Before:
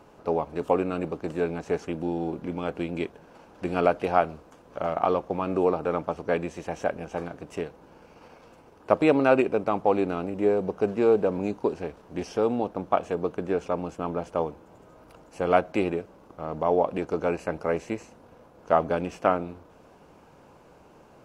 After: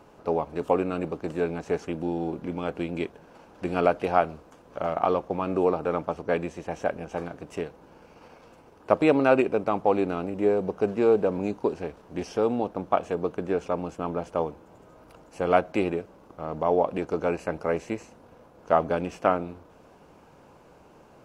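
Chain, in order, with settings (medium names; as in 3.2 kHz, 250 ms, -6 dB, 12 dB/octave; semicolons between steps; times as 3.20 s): 4.97–7.09 s: tape noise reduction on one side only decoder only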